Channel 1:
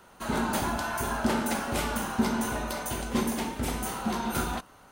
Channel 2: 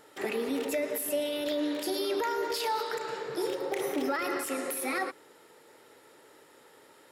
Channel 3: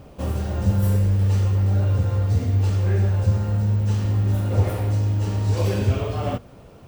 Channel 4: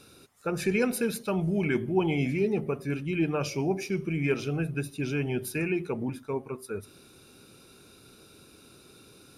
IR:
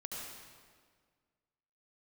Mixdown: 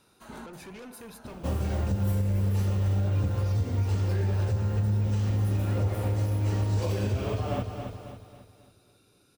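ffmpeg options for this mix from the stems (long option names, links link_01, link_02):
-filter_complex "[0:a]volume=-14.5dB[link_01];[1:a]adelay=1550,volume=-16dB[link_02];[2:a]adelay=1250,volume=-2dB,asplit=2[link_03][link_04];[link_04]volume=-9.5dB[link_05];[3:a]asoftclip=type=tanh:threshold=-31dB,volume=-10.5dB,asplit=2[link_06][link_07];[link_07]apad=whole_len=216795[link_08];[link_01][link_08]sidechaincompress=threshold=-54dB:ratio=8:attack=16:release=320[link_09];[link_05]aecho=0:1:273|546|819|1092|1365|1638:1|0.42|0.176|0.0741|0.0311|0.0131[link_10];[link_09][link_02][link_03][link_06][link_10]amix=inputs=5:normalize=0,alimiter=limit=-19dB:level=0:latency=1:release=244"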